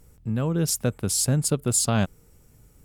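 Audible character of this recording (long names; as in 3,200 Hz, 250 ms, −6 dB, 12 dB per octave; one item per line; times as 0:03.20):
background noise floor −57 dBFS
spectral slope −4.5 dB per octave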